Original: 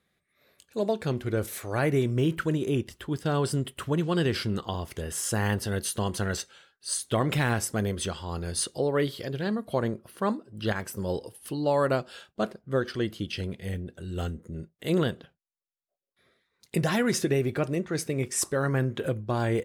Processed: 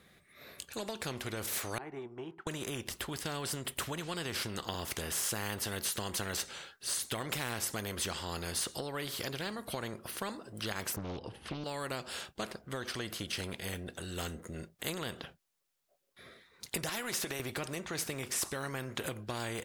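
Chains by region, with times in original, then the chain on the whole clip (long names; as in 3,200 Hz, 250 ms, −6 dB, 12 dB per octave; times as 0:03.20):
0:01.78–0:02.47: pair of resonant band-passes 550 Hz, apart 1.1 octaves + expander for the loud parts, over −48 dBFS
0:10.96–0:11.64: low-pass filter 5,800 Hz + bass and treble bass +11 dB, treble −15 dB + highs frequency-modulated by the lows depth 0.62 ms
0:16.89–0:17.40: high-pass filter 430 Hz 6 dB per octave + downward compressor 3 to 1, threshold −30 dBFS
whole clip: downward compressor, threshold −29 dBFS; every bin compressed towards the loudest bin 2 to 1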